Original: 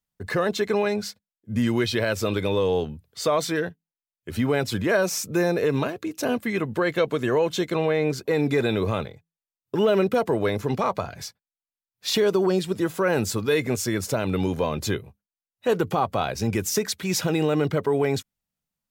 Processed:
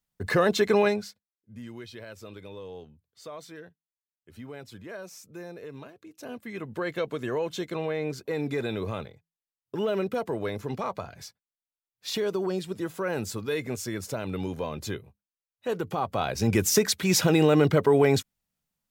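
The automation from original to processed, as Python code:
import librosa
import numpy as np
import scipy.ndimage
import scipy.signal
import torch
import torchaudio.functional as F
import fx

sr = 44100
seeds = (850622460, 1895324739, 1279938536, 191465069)

y = fx.gain(x, sr, db=fx.line((0.88, 1.5), (1.06, -9.0), (1.57, -19.0), (5.99, -19.0), (6.83, -7.5), (15.87, -7.5), (16.6, 2.5)))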